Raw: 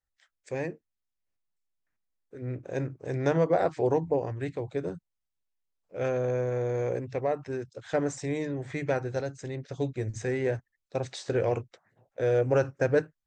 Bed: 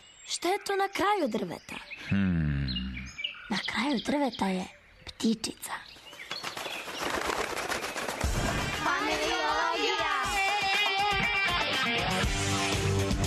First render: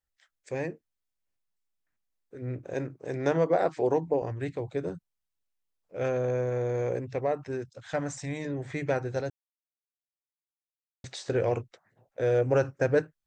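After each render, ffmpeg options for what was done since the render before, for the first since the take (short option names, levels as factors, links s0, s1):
-filter_complex "[0:a]asettb=1/sr,asplit=3[s0][s1][s2];[s0]atrim=end=2.744[s3];[s1]atrim=start=2.74:end=4.22,asetpts=PTS-STARTPTS,afade=t=in:d=0.004:c=qsin,afade=t=out:st=1.476:d=0.004:c=qsin,highpass=160[s4];[s2]atrim=start=4.216[s5];[s3][s4]acrossfade=d=0.004:c1=hsin:c2=qsin[s6];[s6][s5]acrossfade=d=0.004:c1=qsin:c2=hsin,asettb=1/sr,asplit=3[s7][s8][s9];[s7]atrim=end=7.704[s10];[s8]atrim=start=7.7:end=8.45,asetpts=PTS-STARTPTS,afade=t=in:d=0.004:c=qsin,afade=t=out:st=0.746:d=0.004:c=qsin,equalizer=f=390:w=2.8:g=-14.5[s11];[s9]atrim=start=8.446[s12];[s10][s11]acrossfade=d=0.004:c1=hsin:c2=qsin[s13];[s13][s12]acrossfade=d=0.004:c1=qsin:c2=hsin,asplit=3[s14][s15][s16];[s14]atrim=end=9.3,asetpts=PTS-STARTPTS,afade=t=out:st=9.296:d=0.004:c=hsin[s17];[s15]atrim=start=9.3:end=11.04,asetpts=PTS-STARTPTS,volume=0[s18];[s16]atrim=start=11.04,asetpts=PTS-STARTPTS,afade=t=in:d=0.004:c=hsin[s19];[s17][s18][s19]concat=n=3:v=0:a=1"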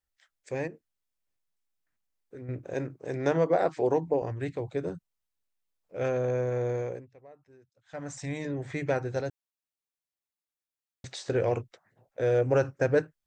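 -filter_complex "[0:a]asettb=1/sr,asplit=3[s0][s1][s2];[s0]atrim=end=0.674[s3];[s1]atrim=start=0.67:end=2.49,asetpts=PTS-STARTPTS,afade=t=in:d=0.004:c=qsin,afade=t=out:st=1.816:d=0.004:c=qsin,acompressor=threshold=0.0126:ratio=6:attack=3.2:release=140:knee=1:detection=peak[s4];[s2]atrim=start=2.486[s5];[s3][s4]acrossfade=d=0.004:c1=hsin:c2=qsin[s6];[s6][s5]acrossfade=d=0.004:c1=qsin:c2=hsin,asplit=3[s7][s8][s9];[s7]atrim=end=7.1,asetpts=PTS-STARTPTS,afade=t=out:st=6.7:d=0.4:silence=0.0668344[s10];[s8]atrim=start=7.1:end=7.85,asetpts=PTS-STARTPTS,volume=0.0668[s11];[s9]atrim=start=7.85,asetpts=PTS-STARTPTS,afade=t=in:d=0.4:silence=0.0668344[s12];[s10][s11][s12]concat=n=3:v=0:a=1"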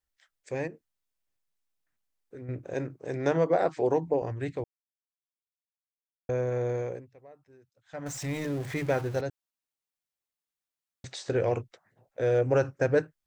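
-filter_complex "[0:a]asettb=1/sr,asplit=3[s0][s1][s2];[s0]atrim=end=8.064[s3];[s1]atrim=start=8.06:end=9.21,asetpts=PTS-STARTPTS,afade=t=in:d=0.004:c=qsin,afade=t=out:st=1.146:d=0.004:c=qsin,aeval=exprs='val(0)+0.5*0.0119*sgn(val(0))':c=same[s4];[s2]atrim=start=9.206[s5];[s3][s4]acrossfade=d=0.004:c1=hsin:c2=qsin[s6];[s6][s5]acrossfade=d=0.004:c1=qsin:c2=hsin,asplit=3[s7][s8][s9];[s7]atrim=end=4.64,asetpts=PTS-STARTPTS,afade=t=out:st=4.636:d=0.004:c=hsin[s10];[s8]atrim=start=4.64:end=6.29,asetpts=PTS-STARTPTS,volume=0[s11];[s9]atrim=start=6.29,asetpts=PTS-STARTPTS,afade=t=in:d=0.004:c=hsin[s12];[s10][s11][s12]concat=n=3:v=0:a=1"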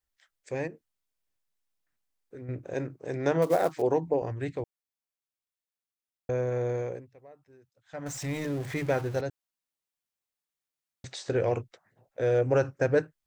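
-filter_complex "[0:a]asettb=1/sr,asplit=3[s0][s1][s2];[s0]atrim=end=3.424[s3];[s1]atrim=start=3.42:end=3.82,asetpts=PTS-STARTPTS,afade=t=in:d=0.004:c=qsin,afade=t=out:st=0.396:d=0.004:c=qsin,acrusher=bits=5:mode=log:mix=0:aa=0.000001[s4];[s2]atrim=start=3.816[s5];[s3][s4]acrossfade=d=0.004:c1=hsin:c2=qsin[s6];[s6][s5]acrossfade=d=0.004:c1=qsin:c2=hsin"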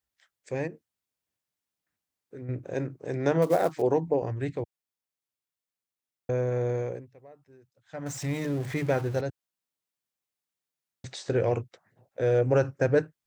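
-af "highpass=86,lowshelf=f=240:g=5"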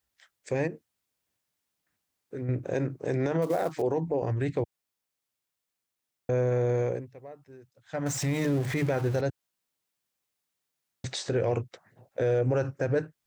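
-filter_complex "[0:a]asplit=2[s0][s1];[s1]acompressor=threshold=0.0251:ratio=6,volume=0.944[s2];[s0][s2]amix=inputs=2:normalize=0,alimiter=limit=0.119:level=0:latency=1:release=58"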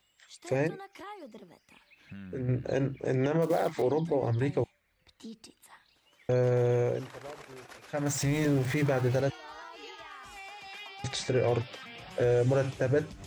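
-filter_complex "[1:a]volume=0.126[s0];[0:a][s0]amix=inputs=2:normalize=0"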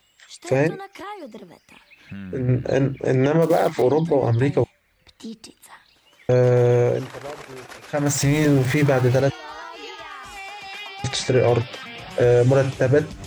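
-af "volume=2.99"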